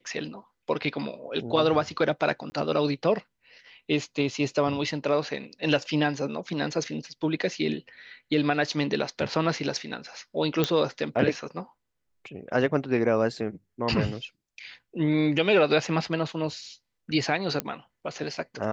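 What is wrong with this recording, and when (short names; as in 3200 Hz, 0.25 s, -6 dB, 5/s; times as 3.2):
2.5–2.52 gap 20 ms
10.64 pop -9 dBFS
17.6 pop -11 dBFS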